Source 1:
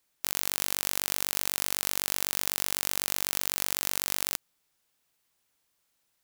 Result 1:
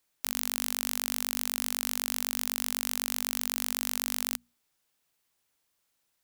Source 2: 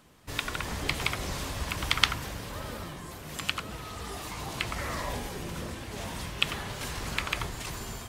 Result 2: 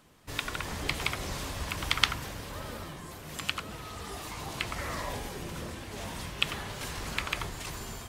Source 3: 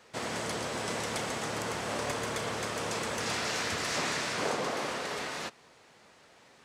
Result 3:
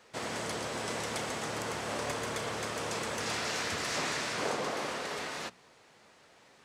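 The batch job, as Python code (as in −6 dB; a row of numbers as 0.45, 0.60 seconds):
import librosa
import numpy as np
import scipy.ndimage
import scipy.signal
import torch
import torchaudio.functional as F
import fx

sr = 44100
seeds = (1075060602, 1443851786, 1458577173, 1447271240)

y = fx.hum_notches(x, sr, base_hz=60, count=4)
y = y * 10.0 ** (-1.5 / 20.0)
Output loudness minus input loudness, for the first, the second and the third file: −1.5, −1.5, −1.5 LU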